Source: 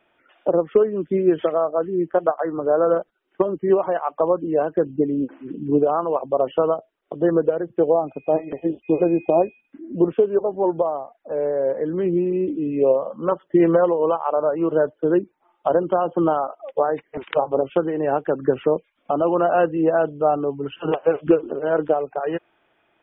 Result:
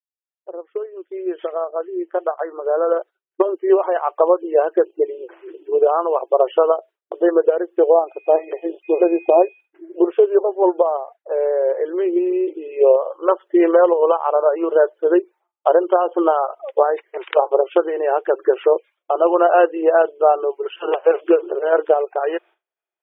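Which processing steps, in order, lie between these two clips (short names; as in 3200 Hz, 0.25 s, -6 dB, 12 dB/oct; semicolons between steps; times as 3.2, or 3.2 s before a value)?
opening faded in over 4.11 s; expander -39 dBFS; in parallel at 0 dB: level quantiser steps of 9 dB; on the sum: brick-wall FIR high-pass 330 Hz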